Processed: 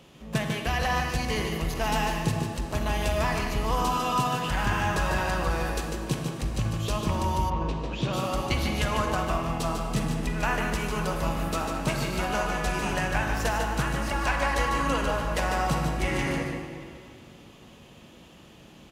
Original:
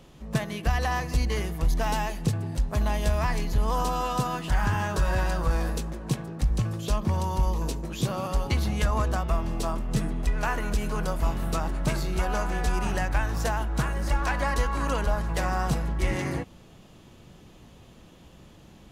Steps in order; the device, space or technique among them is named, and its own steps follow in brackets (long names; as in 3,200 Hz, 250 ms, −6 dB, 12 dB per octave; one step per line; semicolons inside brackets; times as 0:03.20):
PA in a hall (high-pass filter 120 Hz 6 dB per octave; parametric band 2,700 Hz +4.5 dB 0.68 octaves; single-tap delay 148 ms −6 dB; convolution reverb RT60 2.4 s, pre-delay 33 ms, DRR 4.5 dB)
0:07.49–0:08.12: low-pass filter 2,400 Hz → 4,100 Hz 12 dB per octave